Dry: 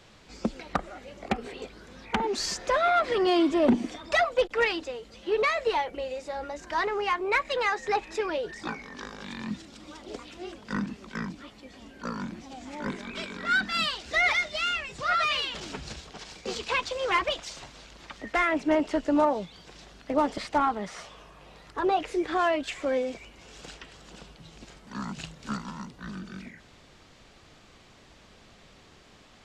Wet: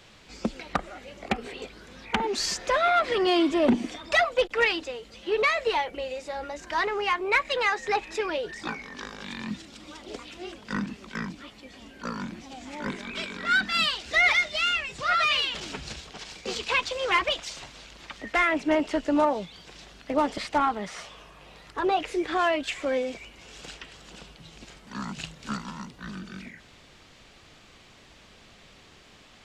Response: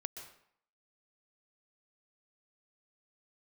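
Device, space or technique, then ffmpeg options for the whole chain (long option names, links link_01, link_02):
presence and air boost: -af "equalizer=frequency=2700:width_type=o:width=1.4:gain=4,highshelf=frequency=9400:gain=5.5"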